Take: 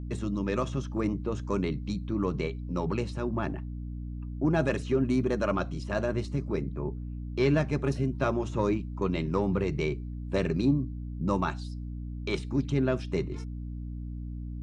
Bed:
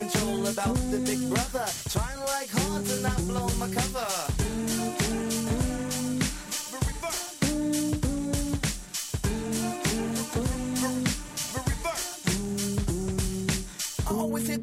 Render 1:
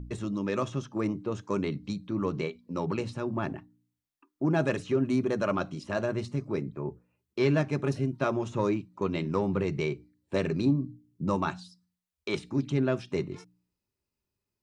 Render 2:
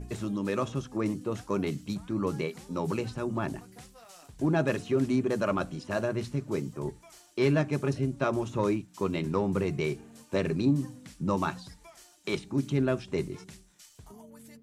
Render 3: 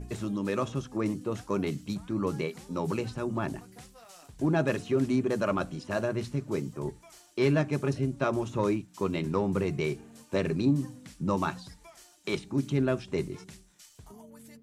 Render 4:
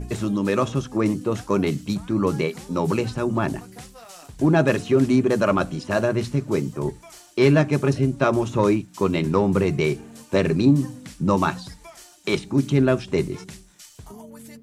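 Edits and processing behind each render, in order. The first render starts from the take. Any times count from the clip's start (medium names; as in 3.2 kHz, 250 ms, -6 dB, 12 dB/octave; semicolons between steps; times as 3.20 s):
de-hum 60 Hz, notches 5
add bed -22 dB
no audible change
trim +8.5 dB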